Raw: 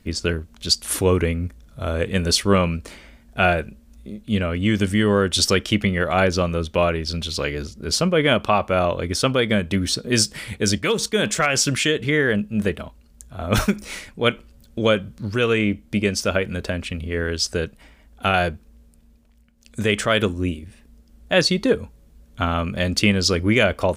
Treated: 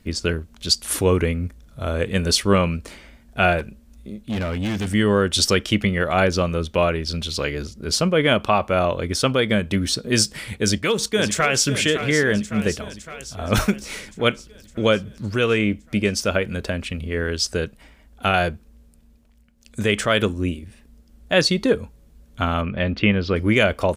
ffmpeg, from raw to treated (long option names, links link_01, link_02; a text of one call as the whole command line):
ffmpeg -i in.wav -filter_complex "[0:a]asettb=1/sr,asplit=3[link_01][link_02][link_03];[link_01]atrim=end=3.594[link_04];[link_02]atrim=start=3.59:end=4.94,asetpts=PTS-STARTPTS,afade=type=in:duration=0.004:curve=qsin,afade=type=out:start_time=1.346:duration=0.004:curve=qsin,asoftclip=type=hard:threshold=-21.5dB[link_05];[link_03]atrim=start=4.936[link_06];[link_04][link_05]acrossfade=duration=0.004:curve1=hsin:curve2=qsin[link_07];[link_07][link_06]acrossfade=duration=0.004:curve1=qsin:curve2=hsin,asplit=2[link_08][link_09];[link_09]afade=type=in:start_time=10.55:duration=0.01,afade=type=out:start_time=11.67:duration=0.01,aecho=0:1:560|1120|1680|2240|2800|3360|3920|4480:0.298538|0.19405|0.126132|0.0819861|0.0532909|0.0346391|0.0225154|0.014635[link_10];[link_08][link_10]amix=inputs=2:normalize=0,asplit=3[link_11][link_12][link_13];[link_11]afade=type=out:start_time=22.61:duration=0.02[link_14];[link_12]lowpass=frequency=3100:width=0.5412,lowpass=frequency=3100:width=1.3066,afade=type=in:start_time=22.61:duration=0.02,afade=type=out:start_time=23.35:duration=0.02[link_15];[link_13]afade=type=in:start_time=23.35:duration=0.02[link_16];[link_14][link_15][link_16]amix=inputs=3:normalize=0" out.wav